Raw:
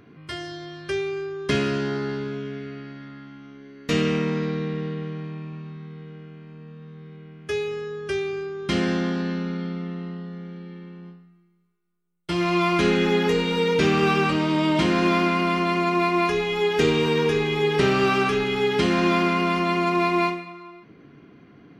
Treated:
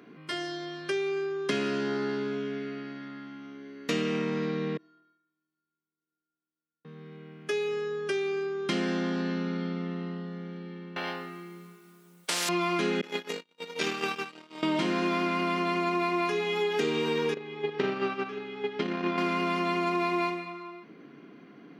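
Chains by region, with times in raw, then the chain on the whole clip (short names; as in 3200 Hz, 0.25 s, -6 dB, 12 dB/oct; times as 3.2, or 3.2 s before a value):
4.77–6.85 gate -30 dBFS, range -19 dB + metallic resonator 330 Hz, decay 0.83 s, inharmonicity 0.008
10.96–12.49 transient shaper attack -9 dB, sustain -1 dB + spectral compressor 10:1
13.01–14.63 gate -19 dBFS, range -51 dB + tilt +2.5 dB/oct
17.34–19.18 gate -20 dBFS, range -14 dB + air absorption 160 m
whole clip: HPF 180 Hz 24 dB/oct; compressor 3:1, threshold -27 dBFS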